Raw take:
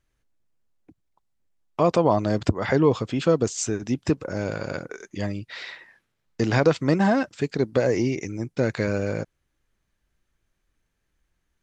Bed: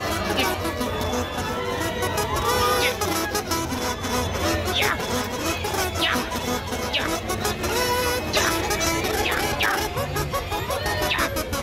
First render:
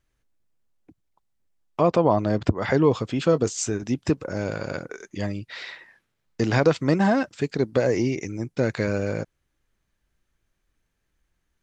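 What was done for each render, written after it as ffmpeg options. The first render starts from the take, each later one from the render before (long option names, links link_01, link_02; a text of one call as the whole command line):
ffmpeg -i in.wav -filter_complex "[0:a]asettb=1/sr,asplit=3[link_01][link_02][link_03];[link_01]atrim=end=1.814[link_04];[link_02]atrim=start=1.81:end=2.58,asetpts=PTS-STARTPTS,afade=type=in:duration=0.004:curve=qsin,afade=type=out:start_time=0.766:duration=0.004:curve=qsin,aemphasis=mode=reproduction:type=50fm[link_05];[link_03]atrim=start=2.576[link_06];[link_04][link_05]acrossfade=duration=0.004:curve1=hsin:curve2=qsin[link_07];[link_07][link_06]acrossfade=duration=0.004:curve1=qsin:curve2=hsin,asettb=1/sr,asplit=3[link_08][link_09][link_10];[link_08]atrim=end=3.314[link_11];[link_09]atrim=start=3.31:end=3.84,asetpts=PTS-STARTPTS,afade=type=in:duration=0.004:curve=qsin,afade=type=out:start_time=0.526:duration=0.004:curve=qsin,asplit=2[link_12][link_13];[link_13]adelay=20,volume=-13dB[link_14];[link_12][link_14]amix=inputs=2:normalize=0,atrim=end_sample=23373[link_15];[link_10]atrim=start=3.836[link_16];[link_11][link_15]acrossfade=duration=0.004:curve1=hsin:curve2=qsin[link_17];[link_17][link_16]acrossfade=duration=0.004:curve1=qsin:curve2=hsin" out.wav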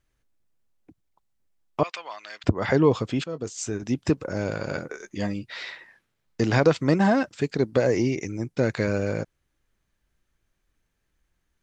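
ffmpeg -i in.wav -filter_complex "[0:a]asettb=1/sr,asplit=3[link_01][link_02][link_03];[link_01]atrim=end=1.834[link_04];[link_02]atrim=start=1.83:end=2.44,asetpts=PTS-STARTPTS,afade=type=in:duration=0.004:curve=qsin,afade=type=out:start_time=0.606:duration=0.004:curve=qsin,highpass=frequency=2200:width_type=q:width=1.6[link_05];[link_03]atrim=start=2.436[link_06];[link_04][link_05]acrossfade=duration=0.004:curve1=hsin:curve2=qsin[link_07];[link_07][link_06]acrossfade=duration=0.004:curve1=qsin:curve2=hsin,asettb=1/sr,asplit=3[link_08][link_09][link_10];[link_08]atrim=end=4.674[link_11];[link_09]atrim=start=4.67:end=5.7,asetpts=PTS-STARTPTS,afade=type=in:duration=0.004:curve=qsin,afade=type=out:start_time=1.026:duration=0.004:curve=qsin,asplit=2[link_12][link_13];[link_13]adelay=14,volume=-7dB[link_14];[link_12][link_14]amix=inputs=2:normalize=0,atrim=end_sample=45423[link_15];[link_10]atrim=start=5.696[link_16];[link_11][link_15]acrossfade=duration=0.004:curve1=hsin:curve2=qsin[link_17];[link_17][link_16]acrossfade=duration=0.004:curve1=qsin:curve2=hsin,asplit=2[link_18][link_19];[link_18]atrim=end=3.24,asetpts=PTS-STARTPTS,afade=type=out:start_time=3.236:duration=0.004:curve=hsin:silence=0.112202[link_20];[link_19]atrim=start=3.24,asetpts=PTS-STARTPTS,afade=type=in:duration=0.73:silence=0.112202[link_21];[link_20][link_21]concat=n=2:v=0:a=1" out.wav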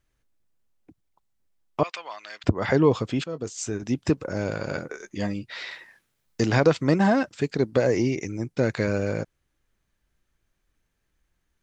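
ffmpeg -i in.wav -filter_complex "[0:a]asettb=1/sr,asplit=3[link_01][link_02][link_03];[link_01]atrim=end=5.714[link_04];[link_02]atrim=start=5.71:end=6.46,asetpts=PTS-STARTPTS,afade=type=in:duration=0.004:curve=qsin,afade=type=out:start_time=0.746:duration=0.004:curve=qsin,highshelf=frequency=5600:gain=10.5[link_05];[link_03]atrim=start=6.456[link_06];[link_04][link_05]acrossfade=duration=0.004:curve1=hsin:curve2=qsin[link_07];[link_07][link_06]acrossfade=duration=0.004:curve1=qsin:curve2=hsin" out.wav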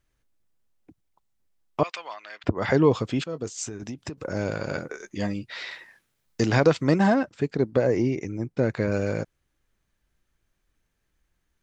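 ffmpeg -i in.wav -filter_complex "[0:a]asettb=1/sr,asplit=3[link_01][link_02][link_03];[link_01]atrim=end=2.144[link_04];[link_02]atrim=start=2.14:end=2.57,asetpts=PTS-STARTPTS,afade=type=in:duration=0.004:curve=qsin,afade=type=out:start_time=0.426:duration=0.004:curve=qsin,bass=frequency=250:gain=-5,treble=frequency=4000:gain=-11[link_05];[link_03]atrim=start=2.566[link_06];[link_04][link_05]acrossfade=duration=0.004:curve1=hsin:curve2=qsin[link_07];[link_07][link_06]acrossfade=duration=0.004:curve1=qsin:curve2=hsin,asettb=1/sr,asplit=3[link_08][link_09][link_10];[link_08]atrim=end=3.664[link_11];[link_09]atrim=start=3.66:end=4.18,asetpts=PTS-STARTPTS,afade=type=in:duration=0.004:curve=qsin,afade=type=out:start_time=0.516:duration=0.004:curve=qsin,acompressor=threshold=-30dB:ratio=16:attack=3.2:release=140:knee=1:detection=peak[link_12];[link_10]atrim=start=4.176[link_13];[link_11][link_12]acrossfade=duration=0.004:curve1=hsin:curve2=qsin[link_14];[link_14][link_13]acrossfade=duration=0.004:curve1=qsin:curve2=hsin,asettb=1/sr,asplit=3[link_15][link_16][link_17];[link_15]atrim=end=7.144[link_18];[link_16]atrim=start=7.14:end=8.92,asetpts=PTS-STARTPTS,afade=type=in:duration=0.004:curve=qsin,afade=type=out:start_time=1.776:duration=0.004:curve=qsin,highshelf=frequency=2400:gain=-10[link_19];[link_17]atrim=start=8.916[link_20];[link_18][link_19]acrossfade=duration=0.004:curve1=hsin:curve2=qsin[link_21];[link_21][link_20]acrossfade=duration=0.004:curve1=qsin:curve2=hsin" out.wav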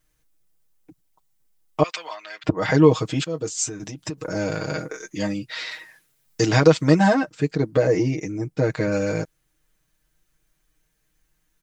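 ffmpeg -i in.wav -af "highshelf=frequency=6300:gain=10.5,aecho=1:1:6.4:0.98" out.wav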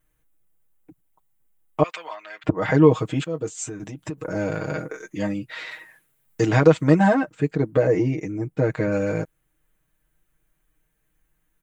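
ffmpeg -i in.wav -af "equalizer=frequency=5100:width_type=o:width=0.97:gain=-13.5" out.wav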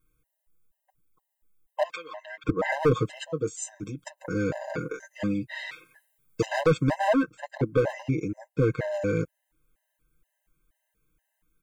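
ffmpeg -i in.wav -af "asoftclip=type=hard:threshold=-15.5dB,afftfilt=real='re*gt(sin(2*PI*2.1*pts/sr)*(1-2*mod(floor(b*sr/1024/530),2)),0)':imag='im*gt(sin(2*PI*2.1*pts/sr)*(1-2*mod(floor(b*sr/1024/530),2)),0)':win_size=1024:overlap=0.75" out.wav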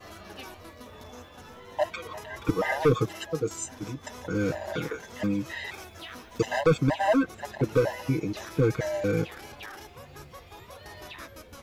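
ffmpeg -i in.wav -i bed.wav -filter_complex "[1:a]volume=-20.5dB[link_01];[0:a][link_01]amix=inputs=2:normalize=0" out.wav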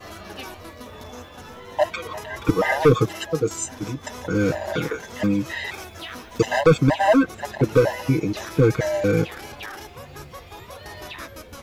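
ffmpeg -i in.wav -af "volume=6.5dB" out.wav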